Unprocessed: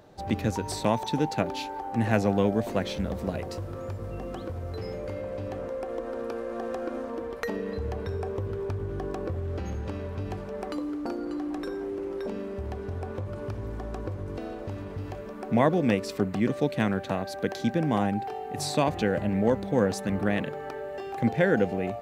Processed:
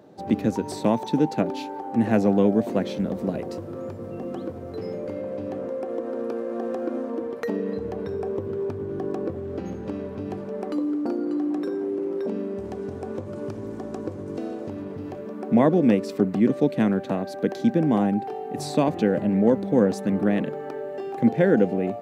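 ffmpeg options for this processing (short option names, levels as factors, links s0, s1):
-filter_complex "[0:a]asettb=1/sr,asplit=3[s0][s1][s2];[s0]atrim=end=12.584[s3];[s1]atrim=start=12.58:end=14.69,asetpts=PTS-STARTPTS,afade=t=in:d=0.004:c=qsin,afade=t=out:st=2.106:d=0.004:c=qsin,equalizer=f=7300:t=o:w=1.3:g=8.5[s4];[s2]atrim=start=14.686[s5];[s3][s4]acrossfade=d=0.004:c1=hsin:c2=qsin[s6];[s6][s5]acrossfade=d=0.004:c1=qsin:c2=hsin,highpass=140,equalizer=f=260:t=o:w=2.6:g=11,volume=0.668"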